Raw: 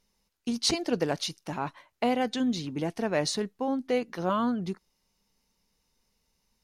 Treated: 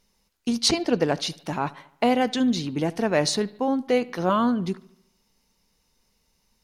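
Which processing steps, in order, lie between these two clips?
0.68–1.27 high shelf 7200 Hz -9.5 dB; analogue delay 73 ms, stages 2048, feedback 53%, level -21 dB; gain +5.5 dB

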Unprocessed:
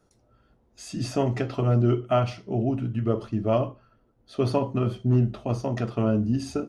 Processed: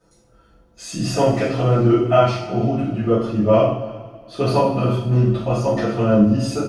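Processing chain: comb 5.9 ms, depth 41%; wow and flutter 28 cents; on a send: echo 0.327 s -21 dB; on the sum: two-slope reverb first 0.56 s, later 2.4 s, from -18 dB, DRR -10 dB; gain -1.5 dB

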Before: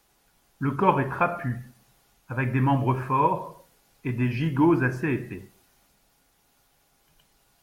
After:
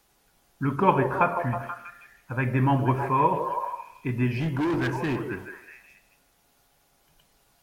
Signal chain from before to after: delay with a stepping band-pass 0.16 s, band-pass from 480 Hz, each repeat 0.7 oct, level -4 dB; 4.34–5.23 hard clip -23 dBFS, distortion -11 dB

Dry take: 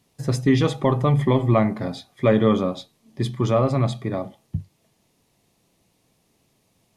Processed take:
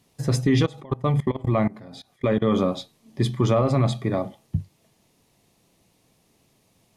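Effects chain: limiter -13 dBFS, peak gain reduction 6.5 dB; 0.65–2.48 level quantiser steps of 22 dB; gain +2 dB

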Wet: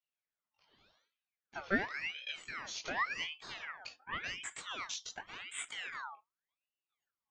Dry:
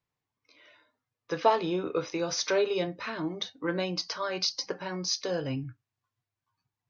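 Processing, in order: speed glide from 82% -> 107%; chorus voices 4, 0.3 Hz, delay 20 ms, depth 1.9 ms; ring modulator with a swept carrier 1900 Hz, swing 50%, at 0.89 Hz; gain -5.5 dB

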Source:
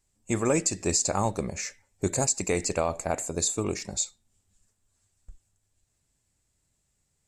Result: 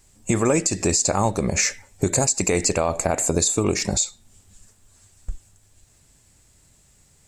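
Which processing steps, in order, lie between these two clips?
compressor 5:1, threshold -34 dBFS, peak gain reduction 13 dB; maximiser +25.5 dB; gain -8 dB

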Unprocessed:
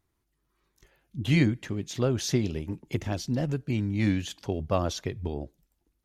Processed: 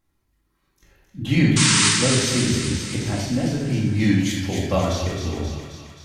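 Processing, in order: 1.56–1.89 painted sound noise 870–9500 Hz -22 dBFS; 3.9–4.76 high shelf 3500 Hz +8.5 dB; thin delay 0.265 s, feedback 63%, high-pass 1400 Hz, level -5 dB; shoebox room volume 530 m³, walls mixed, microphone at 2.2 m

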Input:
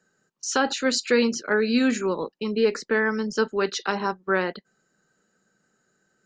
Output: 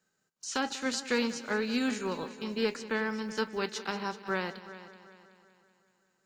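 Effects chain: spectral whitening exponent 0.6; multi-head echo 0.189 s, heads first and second, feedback 49%, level -17 dB; gain -9 dB

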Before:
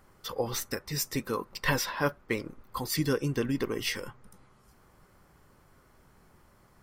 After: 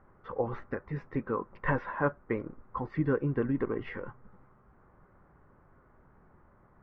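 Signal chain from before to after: LPF 1700 Hz 24 dB/oct

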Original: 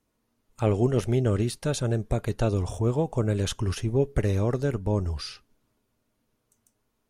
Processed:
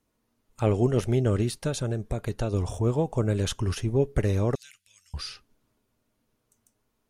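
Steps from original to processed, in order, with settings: 1.67–2.54 compressor, threshold -24 dBFS, peak gain reduction 5.5 dB; 4.55–5.14 inverse Chebyshev high-pass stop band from 910 Hz, stop band 50 dB

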